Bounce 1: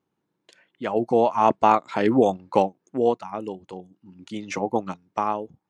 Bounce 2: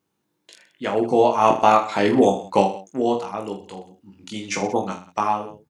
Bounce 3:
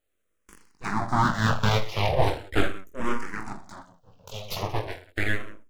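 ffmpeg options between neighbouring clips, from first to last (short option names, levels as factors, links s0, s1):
-filter_complex "[0:a]highshelf=f=3100:g=10,asplit=2[s0][s1];[s1]aecho=0:1:20|46|79.8|123.7|180.9:0.631|0.398|0.251|0.158|0.1[s2];[s0][s2]amix=inputs=2:normalize=0"
-filter_complex "[0:a]aeval=exprs='abs(val(0))':c=same,asplit=2[s0][s1];[s1]afreqshift=-0.38[s2];[s0][s2]amix=inputs=2:normalize=1"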